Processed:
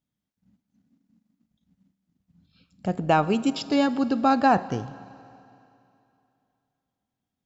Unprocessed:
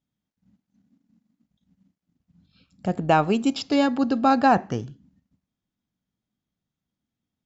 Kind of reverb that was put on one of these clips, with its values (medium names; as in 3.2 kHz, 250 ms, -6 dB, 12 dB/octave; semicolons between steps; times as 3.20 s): Schroeder reverb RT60 2.8 s, combs from 32 ms, DRR 16.5 dB; trim -1.5 dB